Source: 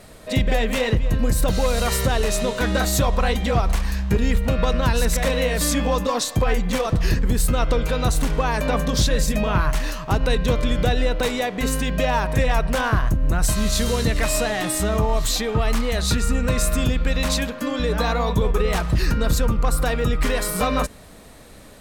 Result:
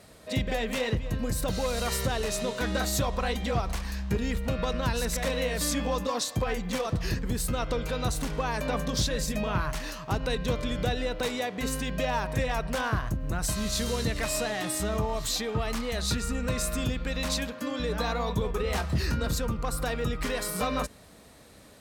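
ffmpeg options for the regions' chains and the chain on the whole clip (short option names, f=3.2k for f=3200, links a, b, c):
-filter_complex "[0:a]asettb=1/sr,asplit=3[a][b][c];[a]atrim=end=18.634[d];[b]atrim=start=18.63:end=19.27,asetpts=PTS-STARTPTS,afade=t=in:d=0.004:c=qsin,afade=t=out:st=0.636:d=0.004:c=qsin,afreqshift=15,asplit=2[e][f];[f]adelay=24,volume=-6.5dB[g];[e][g]amix=inputs=2:normalize=0,atrim=end_sample=28224[h];[c]atrim=start=19.266[i];[d][h]acrossfade=d=0.004:c1=hsin:c2=qsin[j];[j][i]acrossfade=d=0.004:c1=qsin:c2=hsin,highpass=55,equalizer=f=5k:w=1.5:g=2.5,volume=-7.5dB"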